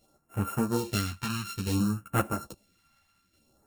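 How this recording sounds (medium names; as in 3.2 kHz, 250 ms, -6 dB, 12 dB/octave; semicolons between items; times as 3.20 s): a buzz of ramps at a fixed pitch in blocks of 32 samples; phasing stages 2, 0.58 Hz, lowest notch 430–4300 Hz; tremolo saw down 1.2 Hz, depth 50%; a shimmering, thickened sound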